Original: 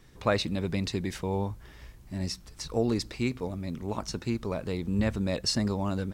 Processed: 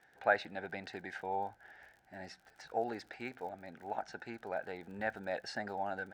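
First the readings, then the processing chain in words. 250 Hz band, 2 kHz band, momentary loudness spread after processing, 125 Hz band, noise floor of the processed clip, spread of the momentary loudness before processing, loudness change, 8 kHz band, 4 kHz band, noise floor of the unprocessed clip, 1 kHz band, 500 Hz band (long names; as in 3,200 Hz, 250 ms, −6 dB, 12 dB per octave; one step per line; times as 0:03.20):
−17.5 dB, +1.0 dB, 17 LU, −23.5 dB, −67 dBFS, 8 LU, −8.5 dB, −20.5 dB, −16.5 dB, −52 dBFS, +0.5 dB, −7.0 dB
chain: pair of resonant band-passes 1,100 Hz, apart 1 octave
surface crackle 43 per second −57 dBFS
level +6.5 dB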